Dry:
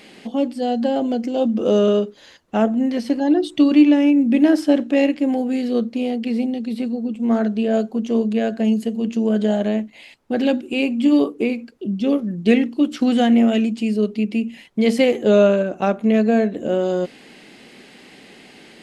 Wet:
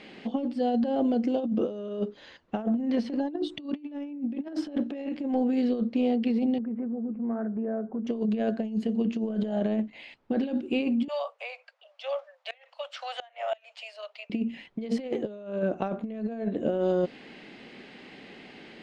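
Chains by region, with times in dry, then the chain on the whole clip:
6.58–8.07 s: steep low-pass 1.7 kHz + compression 3:1, threshold -28 dBFS
11.08–14.30 s: steep high-pass 560 Hz 96 dB/octave + inverted gate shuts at -16 dBFS, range -26 dB
whole clip: low-pass 3.6 kHz 12 dB/octave; dynamic bell 2.2 kHz, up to -5 dB, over -40 dBFS, Q 1.2; compressor with a negative ratio -21 dBFS, ratio -0.5; trim -6 dB

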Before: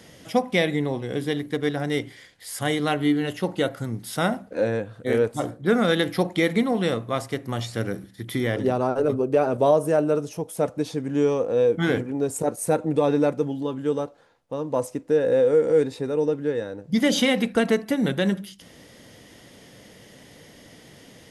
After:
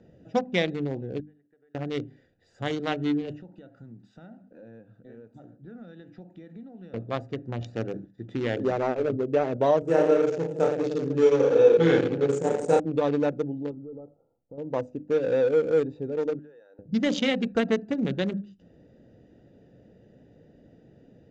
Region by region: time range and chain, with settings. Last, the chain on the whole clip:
1.20–1.75 s: differentiator + compression 3:1, threshold -49 dBFS + low-pass 2.1 kHz 24 dB/octave
3.41–6.94 s: high-pass 180 Hz + compression 2.5:1, threshold -36 dBFS + peaking EQ 450 Hz -10 dB 1.4 oct
7.61–8.97 s: bass shelf 130 Hz -10.5 dB + waveshaping leveller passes 1
9.82–12.80 s: high-pass 120 Hz 24 dB/octave + comb 2.3 ms, depth 34% + reverse bouncing-ball echo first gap 30 ms, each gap 1.2×, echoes 9, each echo -2 dB
13.71–14.58 s: waveshaping leveller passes 1 + compression 2.5:1, threshold -39 dBFS + brick-wall FIR low-pass 1.4 kHz
16.39–16.79 s: high-pass 990 Hz + compression 5:1, threshold -41 dBFS
whole clip: local Wiener filter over 41 samples; elliptic low-pass 7.2 kHz, stop band 50 dB; hum notches 50/100/150/200/250/300 Hz; trim -1.5 dB

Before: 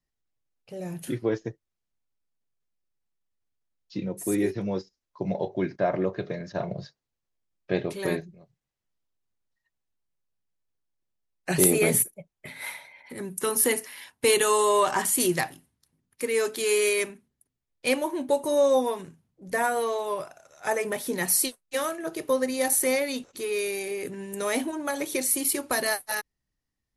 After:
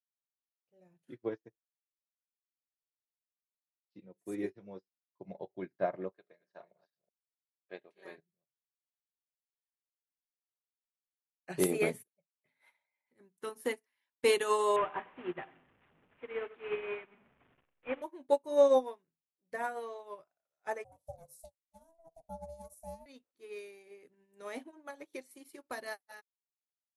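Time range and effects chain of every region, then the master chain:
6.12–8.18 s: chunks repeated in reverse 195 ms, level -9 dB + frequency weighting A
14.76–18.02 s: one-bit delta coder 16 kbps, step -28 dBFS + bass shelf 470 Hz -3 dB + two-band feedback delay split 1.5 kHz, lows 94 ms, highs 133 ms, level -11.5 dB
20.84–23.06 s: FFT filter 100 Hz 0 dB, 300 Hz +8 dB, 500 Hz -3 dB, 1.5 kHz -24 dB, 2.7 kHz -21 dB, 7.5 kHz +3 dB + ring modulator 330 Hz
whole clip: low-pass 2.5 kHz 6 dB/octave; bass shelf 140 Hz -10.5 dB; upward expansion 2.5:1, over -43 dBFS

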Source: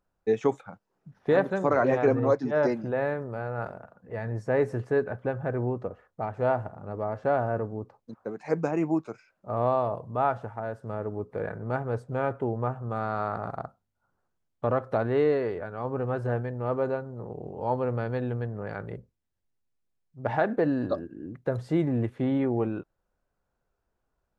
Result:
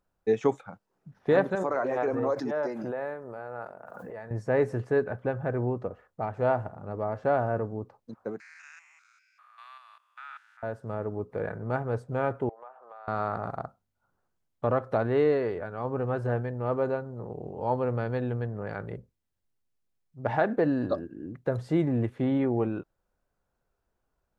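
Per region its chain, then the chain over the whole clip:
1.55–4.31 s: high-pass 790 Hz 6 dB/octave + peaking EQ 3.4 kHz -9.5 dB 2.5 oct + swell ahead of each attack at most 26 dB/s
8.40–10.63 s: spectrogram pixelated in time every 200 ms + steep high-pass 1.5 kHz
12.49–13.08 s: high-pass 600 Hz 24 dB/octave + treble shelf 2.6 kHz -11 dB + compression 3:1, threshold -46 dBFS
whole clip: none

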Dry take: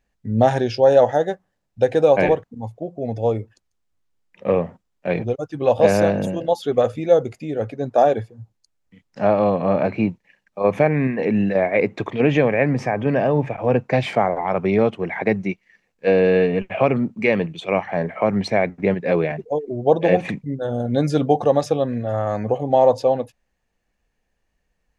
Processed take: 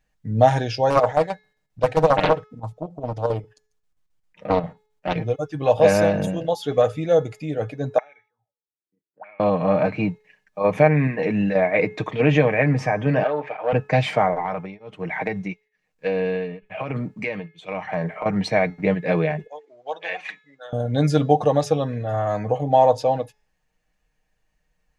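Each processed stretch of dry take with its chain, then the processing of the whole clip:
0.90–5.16 s: square tremolo 7.5 Hz, depth 60%, duty 70% + loudspeaker Doppler distortion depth 0.59 ms
7.98–9.40 s: peaking EQ 6.1 kHz -15 dB 1.6 oct + auto-wah 340–2200 Hz, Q 16, up, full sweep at -19.5 dBFS
13.23–13.73 s: self-modulated delay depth 0.11 ms + band-pass 510–3600 Hz
14.34–18.26 s: compression 10:1, threshold -18 dBFS + tremolo of two beating tones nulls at 1.1 Hz
19.47–20.73 s: high-pass 1.3 kHz + distance through air 87 m
whole clip: peaking EQ 350 Hz -5.5 dB 0.9 oct; comb 6.5 ms, depth 52%; de-hum 426.8 Hz, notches 16

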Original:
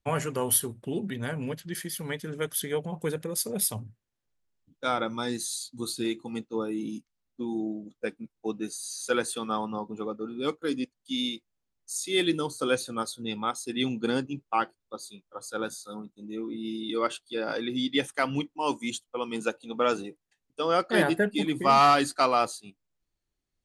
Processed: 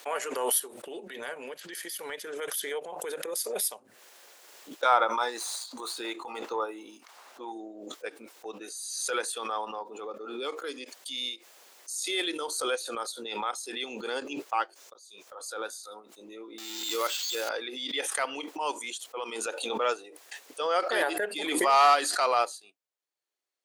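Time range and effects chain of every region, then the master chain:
4.85–7.52 s: median filter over 3 samples + peaking EQ 1 kHz +11.5 dB 1.4 oct
14.49–15.27 s: slow attack 535 ms + peaking EQ 6.2 kHz +8 dB 0.63 oct
16.58–17.49 s: zero-crossing glitches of -22.5 dBFS + treble shelf 3.9 kHz +7.5 dB + careless resampling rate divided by 4×, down filtered, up hold
whole clip: high-pass 440 Hz 24 dB/octave; transient shaper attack -7 dB, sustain -3 dB; swell ahead of each attack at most 39 dB/s

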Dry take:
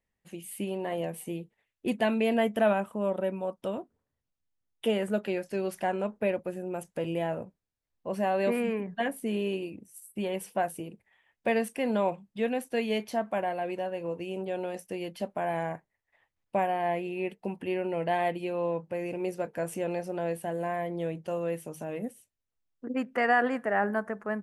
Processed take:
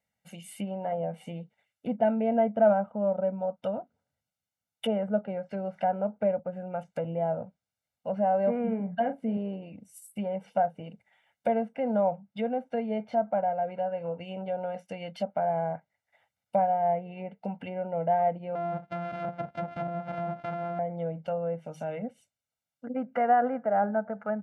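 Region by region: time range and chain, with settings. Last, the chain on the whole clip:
8.63–9.37 s: tone controls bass +4 dB, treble +1 dB + doubling 40 ms -10 dB
18.55–20.79 s: sorted samples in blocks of 128 samples + treble shelf 3.6 kHz -12 dB
whole clip: low-pass that closes with the level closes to 920 Hz, closed at -28 dBFS; high-pass 130 Hz 12 dB/octave; comb 1.4 ms, depth 88%

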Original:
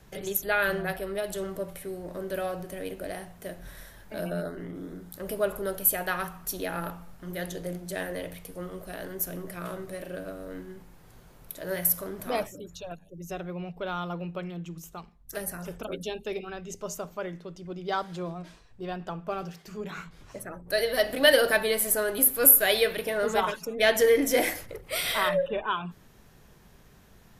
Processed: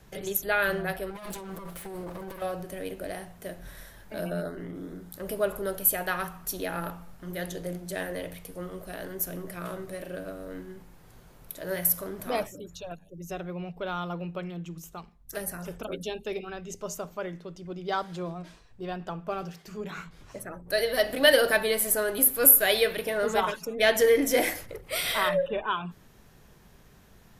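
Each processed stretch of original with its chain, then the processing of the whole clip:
1.10–2.42 s: comb filter that takes the minimum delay 5.9 ms + compressor with a negative ratio -39 dBFS
whole clip: none

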